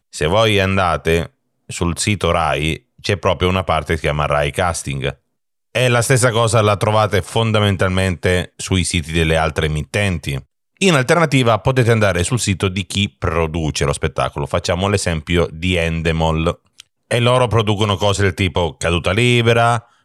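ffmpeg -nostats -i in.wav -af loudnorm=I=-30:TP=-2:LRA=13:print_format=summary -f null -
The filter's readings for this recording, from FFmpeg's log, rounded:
Input Integrated:    -16.5 LUFS
Input True Peak:      -2.2 dBTP
Input LRA:             2.8 LU
Input Threshold:     -26.7 LUFS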